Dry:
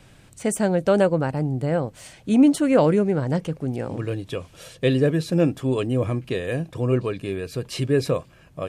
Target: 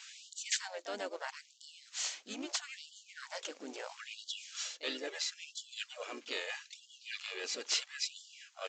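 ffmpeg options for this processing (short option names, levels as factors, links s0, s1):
-filter_complex "[0:a]lowshelf=f=360:g=-11,areverse,acompressor=threshold=0.0158:ratio=5,areverse,crystalizer=i=8.5:c=0,asplit=3[s0][s1][s2];[s1]asetrate=22050,aresample=44100,atempo=2,volume=0.251[s3];[s2]asetrate=52444,aresample=44100,atempo=0.840896,volume=0.501[s4];[s0][s3][s4]amix=inputs=3:normalize=0,acrusher=bits=4:mode=log:mix=0:aa=0.000001,aeval=exprs='(mod(3.76*val(0)+1,2)-1)/3.76':c=same,aresample=16000,aresample=44100,afftfilt=real='re*gte(b*sr/1024,210*pow(2900/210,0.5+0.5*sin(2*PI*0.76*pts/sr)))':imag='im*gte(b*sr/1024,210*pow(2900/210,0.5+0.5*sin(2*PI*0.76*pts/sr)))':win_size=1024:overlap=0.75,volume=0.473"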